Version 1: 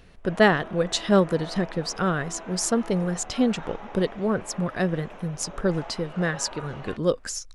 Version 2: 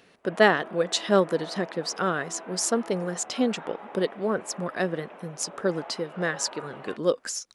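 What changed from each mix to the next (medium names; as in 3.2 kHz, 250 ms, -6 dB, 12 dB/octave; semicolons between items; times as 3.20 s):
background: add distance through air 270 m; master: add high-pass 260 Hz 12 dB/octave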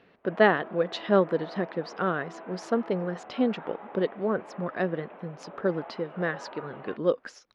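master: add distance through air 320 m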